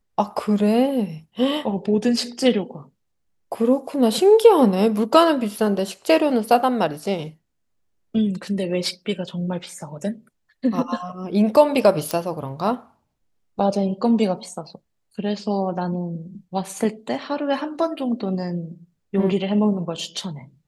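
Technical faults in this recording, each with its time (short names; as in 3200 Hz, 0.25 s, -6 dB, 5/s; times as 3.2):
12.11 pop -9 dBFS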